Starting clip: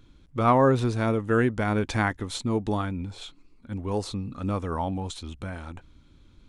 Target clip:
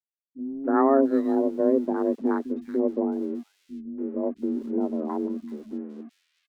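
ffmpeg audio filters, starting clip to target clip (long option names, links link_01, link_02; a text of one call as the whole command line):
ffmpeg -i in.wav -filter_complex "[0:a]highpass=91,aemphasis=mode=reproduction:type=riaa,afftfilt=real='re*gte(hypot(re,im),0.0447)':imag='im*gte(hypot(re,im),0.0447)':win_size=1024:overlap=0.75,lowpass=6200,agate=range=-39dB:threshold=-45dB:ratio=16:detection=peak,afwtdn=0.0631,equalizer=frequency=3800:width_type=o:width=0.27:gain=5.5,afreqshift=140,aeval=exprs='sgn(val(0))*max(abs(val(0))-0.00376,0)':channel_layout=same,acrossover=split=210|2200[link_01][link_02][link_03];[link_02]adelay=290[link_04];[link_03]adelay=670[link_05];[link_01][link_04][link_05]amix=inputs=3:normalize=0,volume=-4dB" out.wav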